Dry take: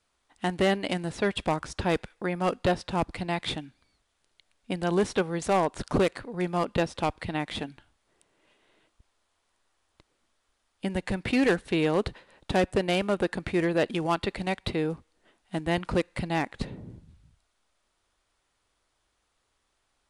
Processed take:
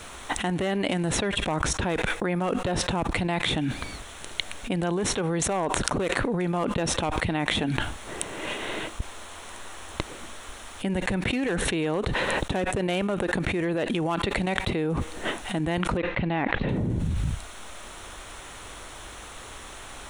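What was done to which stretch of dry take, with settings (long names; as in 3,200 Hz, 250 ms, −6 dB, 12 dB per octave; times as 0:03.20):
0:15.97–0:16.69: low-pass filter 3,400 Hz 24 dB per octave
whole clip: parametric band 4,800 Hz −14 dB 0.21 octaves; envelope flattener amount 100%; level −6 dB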